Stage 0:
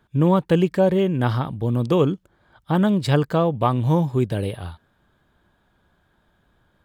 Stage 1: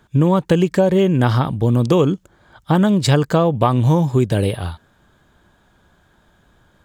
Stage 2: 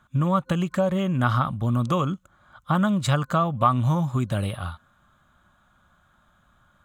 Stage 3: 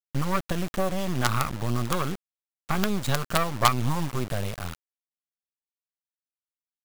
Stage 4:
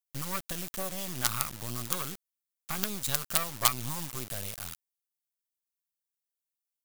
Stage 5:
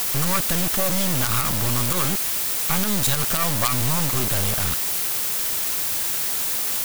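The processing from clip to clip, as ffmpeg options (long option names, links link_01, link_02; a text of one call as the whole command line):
ffmpeg -i in.wav -af "equalizer=frequency=6800:width_type=o:width=0.67:gain=7.5,acompressor=threshold=-18dB:ratio=6,volume=7.5dB" out.wav
ffmpeg -i in.wav -af "superequalizer=6b=0.447:7b=0.282:10b=2.82:14b=0.501,volume=-7dB" out.wav
ffmpeg -i in.wav -af "acrusher=bits=3:dc=4:mix=0:aa=0.000001" out.wav
ffmpeg -i in.wav -af "crystalizer=i=5.5:c=0,volume=-12.5dB" out.wav
ffmpeg -i in.wav -af "aeval=exprs='val(0)+0.5*0.0944*sgn(val(0))':channel_layout=same,alimiter=level_in=6dB:limit=-1dB:release=50:level=0:latency=1,volume=-1dB" out.wav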